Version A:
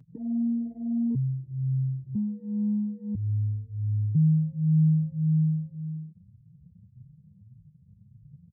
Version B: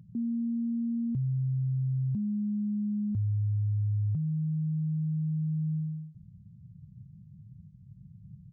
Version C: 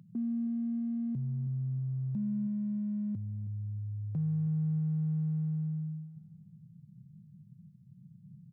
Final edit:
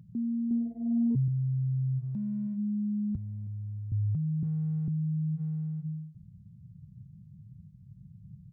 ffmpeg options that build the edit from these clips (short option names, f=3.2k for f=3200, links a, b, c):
-filter_complex "[2:a]asplit=4[a][b][c][d];[1:a]asplit=6[e][f][g][h][i][j];[e]atrim=end=0.512[k];[0:a]atrim=start=0.508:end=1.282[l];[f]atrim=start=1.278:end=2.04[m];[a]atrim=start=1.98:end=2.59[n];[g]atrim=start=2.53:end=3.162[o];[b]atrim=start=3.158:end=3.922[p];[h]atrim=start=3.918:end=4.432[q];[c]atrim=start=4.428:end=4.882[r];[i]atrim=start=4.878:end=5.41[s];[d]atrim=start=5.35:end=5.86[t];[j]atrim=start=5.8[u];[k][l]acrossfade=d=0.004:c1=hsin:c2=hsin[v];[v][m]acrossfade=d=0.004:c1=hsin:c2=hsin[w];[w][n]acrossfade=d=0.06:c1=tri:c2=tri[x];[x][o]acrossfade=d=0.06:c1=tri:c2=tri[y];[y][p]acrossfade=d=0.004:c1=hsin:c2=hsin[z];[z][q]acrossfade=d=0.004:c1=hsin:c2=hsin[aa];[aa][r]acrossfade=d=0.004:c1=hsin:c2=hsin[ab];[ab][s]acrossfade=d=0.004:c1=hsin:c2=hsin[ac];[ac][t]acrossfade=d=0.06:c1=tri:c2=tri[ad];[ad][u]acrossfade=d=0.06:c1=tri:c2=tri"